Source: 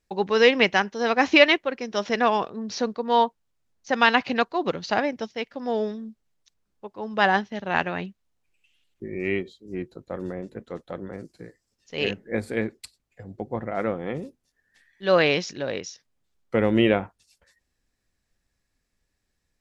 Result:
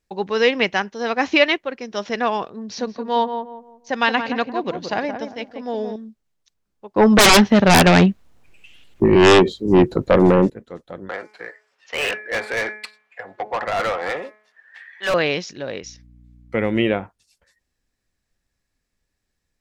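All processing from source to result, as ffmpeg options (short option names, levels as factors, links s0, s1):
-filter_complex "[0:a]asettb=1/sr,asplit=3[s0][s1][s2];[s0]atrim=end=2.614[s3];[s1]atrim=start=2.61:end=5.96,asetpts=PTS-STARTPTS,afade=t=in:d=0.004:c=qsin,afade=t=out:st=3.346:d=0.004:c=qsin,bandreject=f=1300:w=11,asplit=2[s4][s5];[s5]adelay=174,lowpass=f=1100:p=1,volume=0.501,asplit=2[s6][s7];[s7]adelay=174,lowpass=f=1100:p=1,volume=0.35,asplit=2[s8][s9];[s9]adelay=174,lowpass=f=1100:p=1,volume=0.35,asplit=2[s10][s11];[s11]adelay=174,lowpass=f=1100:p=1,volume=0.35[s12];[s4][s6][s8][s10][s12]amix=inputs=5:normalize=0,atrim=end_sample=147735[s13];[s2]atrim=start=5.956[s14];[s3][s13]acrossfade=d=0.004:c1=hsin:c2=qsin[s15];[s15][s14]acrossfade=d=0.004:c1=qsin:c2=hsin,asettb=1/sr,asplit=3[s16][s17][s18];[s16]atrim=end=6.964[s19];[s17]atrim=start=6.96:end=10.5,asetpts=PTS-STARTPTS,afade=t=in:d=0.004:c=qsin,afade=t=out:st=3.536:d=0.004:c=qsin,highshelf=f=2500:g=-9,aeval=exprs='0.447*sin(PI/2*8.91*val(0)/0.447)':c=same[s20];[s18]atrim=start=10.496[s21];[s19][s20]acrossfade=d=0.004:c1=hsin:c2=qsin[s22];[s22][s21]acrossfade=d=0.004:c1=qsin:c2=hsin,asettb=1/sr,asplit=3[s23][s24][s25];[s23]atrim=end=11.094[s26];[s24]atrim=start=11.09:end=15.14,asetpts=PTS-STARTPTS,afade=t=in:d=0.004:c=qsin,afade=t=out:st=4.046:d=0.004:c=qsin,acrossover=split=600 2900:gain=0.0891 1 0.112[s27][s28][s29];[s27][s28][s29]amix=inputs=3:normalize=0,bandreject=f=212.8:t=h:w=4,bandreject=f=425.6:t=h:w=4,bandreject=f=638.4:t=h:w=4,bandreject=f=851.2:t=h:w=4,bandreject=f=1064:t=h:w=4,bandreject=f=1276.8:t=h:w=4,bandreject=f=1489.6:t=h:w=4,bandreject=f=1702.4:t=h:w=4,bandreject=f=1915.2:t=h:w=4,bandreject=f=2128:t=h:w=4,bandreject=f=2340.8:t=h:w=4,asplit=2[s30][s31];[s31]highpass=f=720:p=1,volume=25.1,asoftclip=type=tanh:threshold=0.211[s32];[s30][s32]amix=inputs=2:normalize=0,lowpass=f=5300:p=1,volume=0.501[s33];[s25]atrim=start=15.136[s34];[s26][s33]acrossfade=d=0.004:c1=hsin:c2=qsin[s35];[s35][s34]acrossfade=d=0.004:c1=qsin:c2=hsin,asettb=1/sr,asplit=3[s36][s37][s38];[s36]atrim=end=15.834[s39];[s37]atrim=start=15.83:end=16.83,asetpts=PTS-STARTPTS,afade=t=in:d=0.004:c=qsin,afade=t=out:st=0.996:d=0.004:c=qsin,aeval=exprs='val(0)+0.00447*(sin(2*PI*60*n/s)+sin(2*PI*2*60*n/s)/2+sin(2*PI*3*60*n/s)/3+sin(2*PI*4*60*n/s)/4+sin(2*PI*5*60*n/s)/5)':c=same,equalizer=f=2200:t=o:w=0.39:g=7.5[s40];[s38]atrim=start=16.826[s41];[s39][s40]acrossfade=d=0.004:c1=hsin:c2=qsin[s42];[s42][s41]acrossfade=d=0.004:c1=qsin:c2=hsin"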